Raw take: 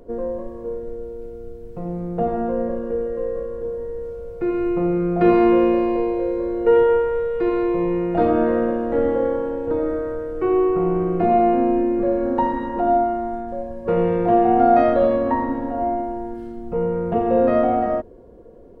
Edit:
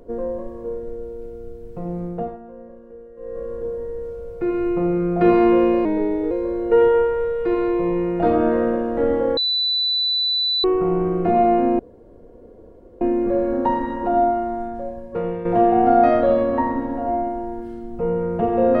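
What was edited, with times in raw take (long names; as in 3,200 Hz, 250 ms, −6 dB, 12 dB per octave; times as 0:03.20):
0:02.04–0:03.51: duck −17 dB, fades 0.35 s linear
0:05.85–0:06.26: play speed 89%
0:09.32–0:10.59: beep over 3,980 Hz −17.5 dBFS
0:11.74: splice in room tone 1.22 s
0:13.46–0:14.18: fade out, to −10 dB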